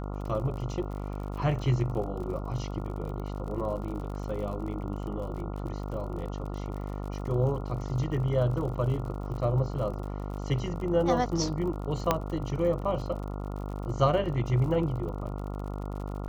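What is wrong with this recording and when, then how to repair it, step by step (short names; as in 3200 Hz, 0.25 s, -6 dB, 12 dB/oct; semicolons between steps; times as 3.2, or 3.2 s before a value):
buzz 50 Hz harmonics 28 -35 dBFS
crackle 53/s -38 dBFS
12.11 pop -9 dBFS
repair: de-click; de-hum 50 Hz, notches 28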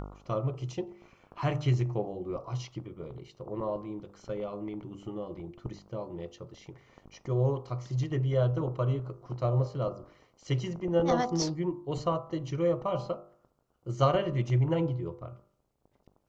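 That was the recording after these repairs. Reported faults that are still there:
none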